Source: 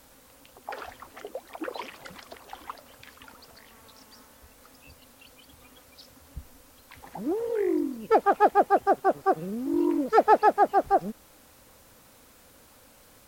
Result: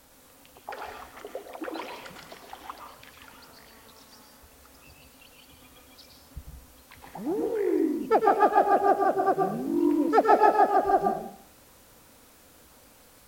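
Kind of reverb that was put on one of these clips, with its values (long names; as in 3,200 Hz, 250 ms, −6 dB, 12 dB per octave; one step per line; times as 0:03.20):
dense smooth reverb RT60 0.6 s, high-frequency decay 1×, pre-delay 95 ms, DRR 3 dB
level −1.5 dB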